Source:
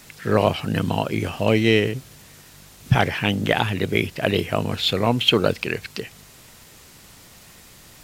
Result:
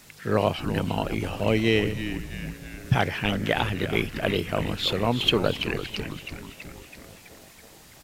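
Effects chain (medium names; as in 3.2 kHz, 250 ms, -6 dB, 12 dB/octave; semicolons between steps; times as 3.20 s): frequency-shifting echo 329 ms, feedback 62%, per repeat -130 Hz, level -10 dB; trim -4.5 dB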